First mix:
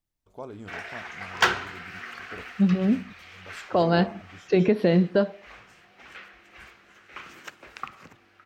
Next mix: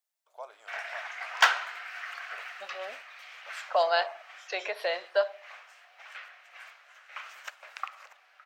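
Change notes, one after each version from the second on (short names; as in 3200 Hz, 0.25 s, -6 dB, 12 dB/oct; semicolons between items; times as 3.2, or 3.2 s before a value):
second voice: add high shelf 4500 Hz +6 dB; master: add elliptic high-pass 610 Hz, stop band 80 dB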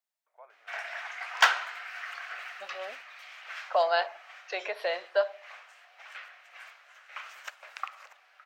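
first voice: add ladder low-pass 2200 Hz, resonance 65%; second voice: add high shelf 4500 Hz -6 dB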